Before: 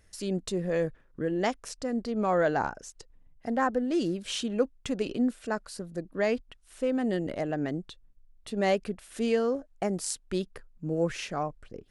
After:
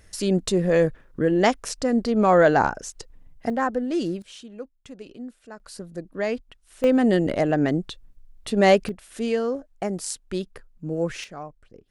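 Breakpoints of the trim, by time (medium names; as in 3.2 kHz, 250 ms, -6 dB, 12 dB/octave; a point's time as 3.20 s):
+9 dB
from 3.50 s +2.5 dB
from 4.22 s -10.5 dB
from 5.60 s +1 dB
from 6.84 s +9.5 dB
from 8.89 s +2 dB
from 11.24 s -5.5 dB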